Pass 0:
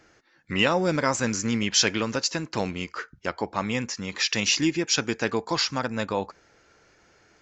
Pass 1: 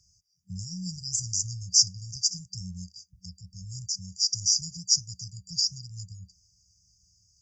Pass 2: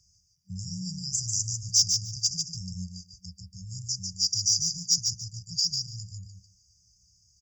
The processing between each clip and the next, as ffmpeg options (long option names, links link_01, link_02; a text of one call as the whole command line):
ffmpeg -i in.wav -af "highpass=47,equalizer=frequency=150:width_type=o:width=0.57:gain=-14,afftfilt=real='re*(1-between(b*sr/4096,190,4700))':imag='im*(1-between(b*sr/4096,190,4700))':win_size=4096:overlap=0.75,volume=3.5dB" out.wav
ffmpeg -i in.wav -filter_complex "[0:a]asoftclip=type=tanh:threshold=-11.5dB,asplit=2[link_01][link_02];[link_02]aecho=0:1:146|292|438:0.562|0.09|0.0144[link_03];[link_01][link_03]amix=inputs=2:normalize=0" out.wav